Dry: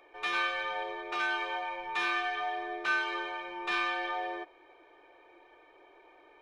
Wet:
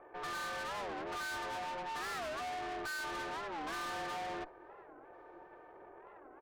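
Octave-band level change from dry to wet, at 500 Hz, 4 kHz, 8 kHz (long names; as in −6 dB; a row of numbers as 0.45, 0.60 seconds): −3.0, −7.5, +5.5 decibels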